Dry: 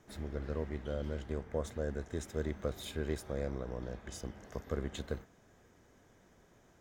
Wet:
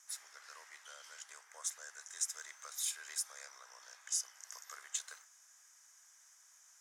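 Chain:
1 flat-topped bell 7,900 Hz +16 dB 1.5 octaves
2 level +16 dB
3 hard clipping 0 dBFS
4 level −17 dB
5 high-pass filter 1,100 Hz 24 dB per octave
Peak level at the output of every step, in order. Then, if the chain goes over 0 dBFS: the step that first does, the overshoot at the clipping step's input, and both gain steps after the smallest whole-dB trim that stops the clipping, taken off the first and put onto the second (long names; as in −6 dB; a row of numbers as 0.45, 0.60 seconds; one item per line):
−20.0, −4.0, −4.0, −21.0, −22.0 dBFS
no step passes full scale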